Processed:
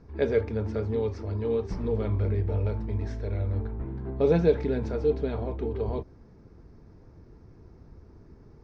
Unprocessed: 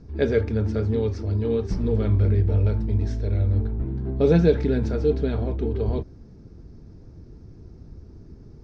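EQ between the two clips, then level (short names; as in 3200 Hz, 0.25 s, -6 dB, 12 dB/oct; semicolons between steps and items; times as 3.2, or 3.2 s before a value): ten-band EQ 500 Hz +4 dB, 1000 Hz +9 dB, 2000 Hz +7 dB; dynamic EQ 1600 Hz, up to -6 dB, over -40 dBFS, Q 1.4; -7.5 dB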